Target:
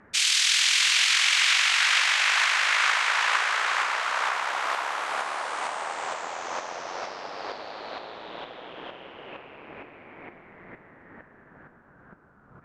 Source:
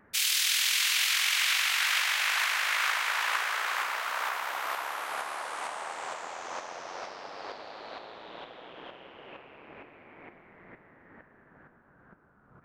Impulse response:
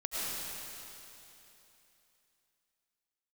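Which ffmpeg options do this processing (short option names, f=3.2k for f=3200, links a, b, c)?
-af "lowpass=f=8.4k:w=0.5412,lowpass=f=8.4k:w=1.3066,volume=5.5dB"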